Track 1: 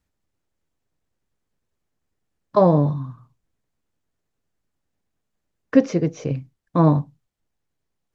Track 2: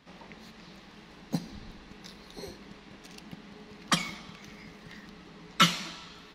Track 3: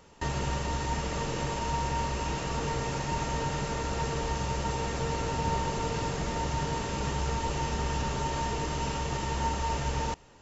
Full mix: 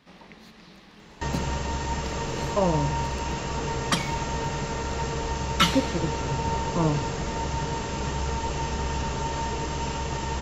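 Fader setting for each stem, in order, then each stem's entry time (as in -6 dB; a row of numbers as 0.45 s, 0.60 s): -9.0 dB, +0.5 dB, +2.0 dB; 0.00 s, 0.00 s, 1.00 s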